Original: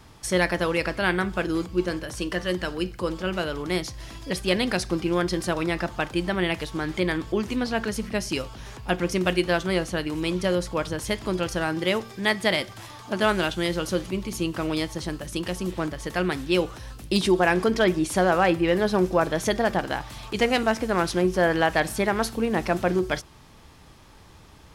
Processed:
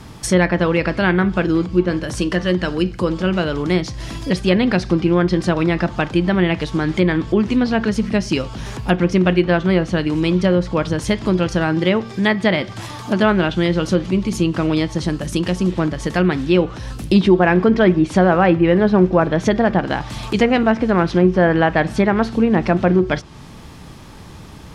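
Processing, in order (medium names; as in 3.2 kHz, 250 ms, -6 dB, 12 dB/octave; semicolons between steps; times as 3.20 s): low-pass that closes with the level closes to 2.7 kHz, closed at -19 dBFS; peaking EQ 180 Hz +7 dB 1.7 oct; in parallel at 0 dB: compression, threshold -32 dBFS, peak gain reduction 18.5 dB; on the sum: trim +3.5 dB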